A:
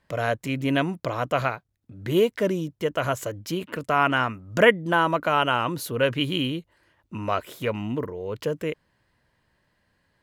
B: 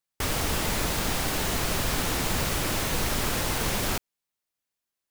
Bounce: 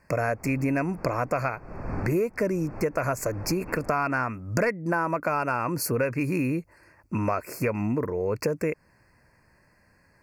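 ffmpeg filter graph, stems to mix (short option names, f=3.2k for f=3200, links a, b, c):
-filter_complex "[0:a]acontrast=82,volume=0.5dB,asplit=2[a][b];[1:a]lowpass=1.1k,volume=-1dB[c];[b]apad=whole_len=225219[d];[c][d]sidechaincompress=threshold=-26dB:ratio=12:attack=7.1:release=444[e];[a][e]amix=inputs=2:normalize=0,asuperstop=centerf=3400:order=20:qfactor=2.1,acompressor=threshold=-23dB:ratio=6"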